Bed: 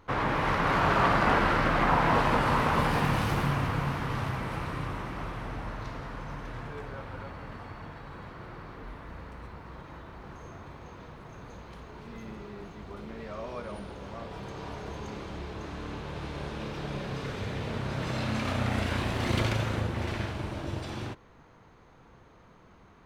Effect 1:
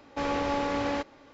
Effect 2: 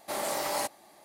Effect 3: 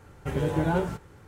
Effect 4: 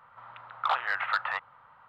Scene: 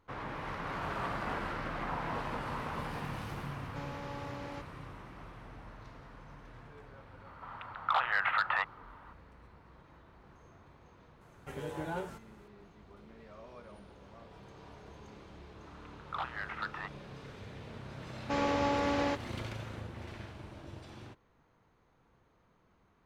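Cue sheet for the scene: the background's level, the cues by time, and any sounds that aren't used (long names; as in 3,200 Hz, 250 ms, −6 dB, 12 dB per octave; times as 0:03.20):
bed −13 dB
0:00.55: mix in 3 −15.5 dB + guitar amp tone stack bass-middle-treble 10-0-10
0:03.59: mix in 1 −9 dB + downward compressor, threshold −31 dBFS
0:07.25: mix in 4 −17 dB + boost into a limiter +18.5 dB
0:11.21: mix in 3 −8.5 dB + low-shelf EQ 300 Hz −10.5 dB
0:15.49: mix in 4 −10.5 dB
0:18.13: mix in 1 −2 dB + high-pass filter 46 Hz
not used: 2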